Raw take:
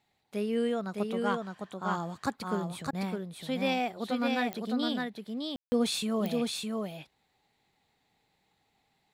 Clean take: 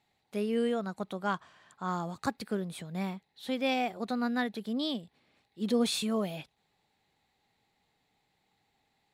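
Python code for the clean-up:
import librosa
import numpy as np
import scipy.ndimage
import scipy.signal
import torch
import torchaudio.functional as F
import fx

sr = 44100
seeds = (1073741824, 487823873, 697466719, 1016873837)

y = fx.fix_declick_ar(x, sr, threshold=10.0)
y = fx.fix_ambience(y, sr, seeds[0], print_start_s=7.09, print_end_s=7.59, start_s=5.56, end_s=5.72)
y = fx.fix_interpolate(y, sr, at_s=(2.91,), length_ms=19.0)
y = fx.fix_echo_inverse(y, sr, delay_ms=610, level_db=-3.5)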